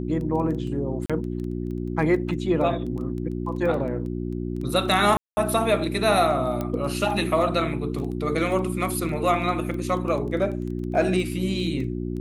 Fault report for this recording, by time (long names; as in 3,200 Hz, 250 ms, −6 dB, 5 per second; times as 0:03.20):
surface crackle 13 per second −31 dBFS
mains hum 60 Hz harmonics 6 −29 dBFS
0:01.06–0:01.10: drop-out 36 ms
0:05.17–0:05.37: drop-out 200 ms
0:06.61: click −15 dBFS